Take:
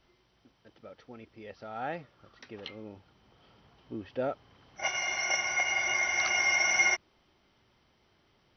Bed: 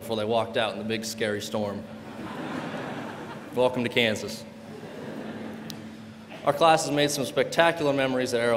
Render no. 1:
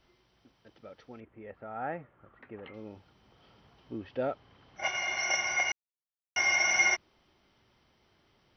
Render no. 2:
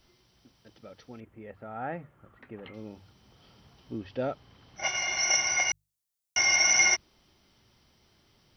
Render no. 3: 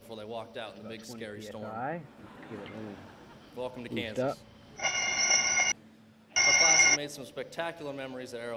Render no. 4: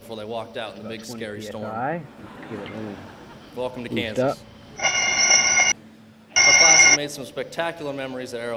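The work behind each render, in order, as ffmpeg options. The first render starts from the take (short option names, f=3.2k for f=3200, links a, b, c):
-filter_complex "[0:a]asettb=1/sr,asplit=3[a][b][c];[a]atrim=end=1.204[d];[b]atrim=start=1.2:end=2.74,asetpts=PTS-STARTPTS,afade=t=in:d=0.004:c=qsin,afade=t=out:st=1.536:d=0.004:c=qsin,lowpass=f=2.1k:w=0.5412,lowpass=f=2.1k:w=1.3066[e];[c]atrim=start=2.736[f];[d][e]acrossfade=d=0.004:c1=hsin:c2=qsin[g];[g][f]acrossfade=d=0.004:c1=qsin:c2=hsin,asettb=1/sr,asplit=3[h][i][j];[h]atrim=end=3.984[k];[i]atrim=start=3.98:end=5.17,asetpts=PTS-STARTPTS,afade=t=in:d=0.004:c=qsin,afade=t=out:st=1.186:d=0.004:c=qsin,lowpass=5k[l];[j]atrim=start=5.166[m];[k][l]acrossfade=d=0.004:c1=hsin:c2=qsin[n];[n][m]acrossfade=d=0.004:c1=qsin:c2=hsin,asplit=3[o][p][q];[o]atrim=end=5.72,asetpts=PTS-STARTPTS,afade=t=out:st=5.716:d=0.004:c=hsin[r];[p]atrim=start=5.72:end=6.36,asetpts=PTS-STARTPTS,volume=0[s];[q]atrim=start=6.36,asetpts=PTS-STARTPTS,afade=t=in:d=0.004:c=hsin[t];[r][s][t]concat=n=3:v=0:a=1"
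-af "bass=f=250:g=6,treble=f=4k:g=12,bandreject=f=50:t=h:w=6,bandreject=f=100:t=h:w=6,bandreject=f=150:t=h:w=6"
-filter_complex "[1:a]volume=-14.5dB[a];[0:a][a]amix=inputs=2:normalize=0"
-af "volume=9dB,alimiter=limit=-2dB:level=0:latency=1"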